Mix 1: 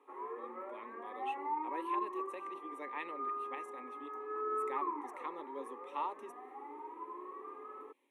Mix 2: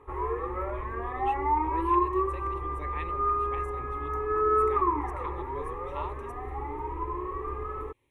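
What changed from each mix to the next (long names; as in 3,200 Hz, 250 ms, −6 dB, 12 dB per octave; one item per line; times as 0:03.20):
background +10.5 dB
master: remove Chebyshev high-pass with heavy ripple 190 Hz, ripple 3 dB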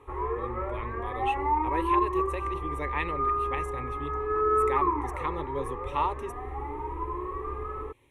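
speech +9.5 dB
background: add high-frequency loss of the air 52 metres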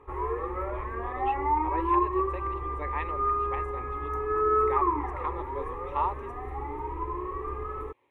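speech: add resonant band-pass 890 Hz, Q 0.9
background: remove high-frequency loss of the air 52 metres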